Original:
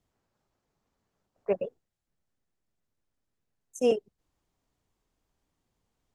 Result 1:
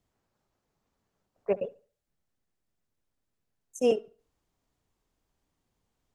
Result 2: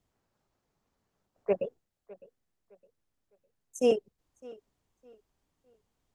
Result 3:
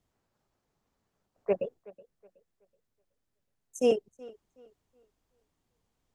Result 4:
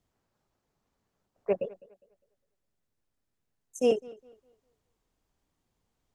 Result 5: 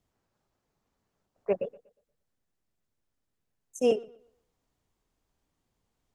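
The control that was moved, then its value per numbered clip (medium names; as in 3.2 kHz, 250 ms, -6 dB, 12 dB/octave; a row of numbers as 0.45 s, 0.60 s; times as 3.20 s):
tape echo, time: 69 ms, 609 ms, 373 ms, 204 ms, 119 ms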